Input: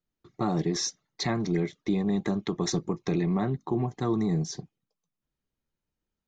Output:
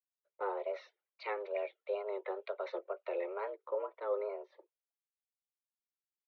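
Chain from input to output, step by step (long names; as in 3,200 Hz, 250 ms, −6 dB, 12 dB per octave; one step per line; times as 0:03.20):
single-sideband voice off tune +200 Hz 240–3,000 Hz
tape wow and flutter 93 cents
multiband upward and downward expander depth 70%
level −7.5 dB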